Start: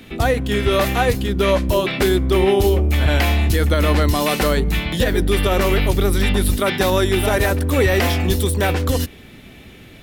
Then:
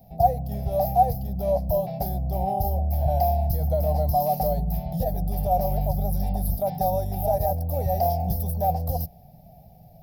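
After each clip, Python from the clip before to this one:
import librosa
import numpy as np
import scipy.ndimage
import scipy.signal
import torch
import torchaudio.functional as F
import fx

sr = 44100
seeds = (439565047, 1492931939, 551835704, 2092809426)

y = fx.curve_eq(x, sr, hz=(110.0, 160.0, 260.0, 370.0, 720.0, 1200.0, 3500.0, 5000.0, 8000.0, 13000.0), db=(0, 7, -15, -22, 14, -29, -26, -5, -23, 7))
y = F.gain(torch.from_numpy(y), -7.0).numpy()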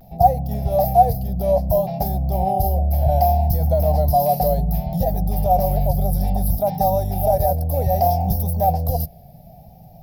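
y = fx.vibrato(x, sr, rate_hz=0.63, depth_cents=46.0)
y = F.gain(torch.from_numpy(y), 5.5).numpy()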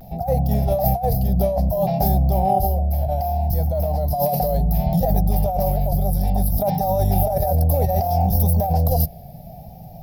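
y = fx.over_compress(x, sr, threshold_db=-21.0, ratio=-1.0)
y = F.gain(torch.from_numpy(y), 2.5).numpy()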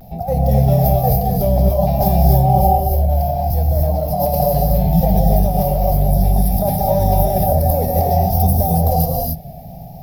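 y = fx.rev_gated(x, sr, seeds[0], gate_ms=310, shape='rising', drr_db=-1.0)
y = F.gain(torch.from_numpy(y), 1.0).numpy()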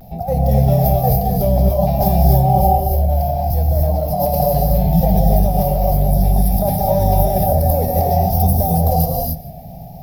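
y = x + 10.0 ** (-19.5 / 20.0) * np.pad(x, (int(162 * sr / 1000.0), 0))[:len(x)]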